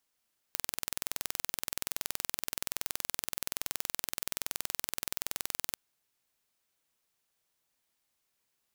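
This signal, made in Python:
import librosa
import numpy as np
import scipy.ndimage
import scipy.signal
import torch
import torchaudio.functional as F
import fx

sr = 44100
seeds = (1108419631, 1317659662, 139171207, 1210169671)

y = 10.0 ** (-5.0 / 20.0) * (np.mod(np.arange(round(5.2 * sr)), round(sr / 21.2)) == 0)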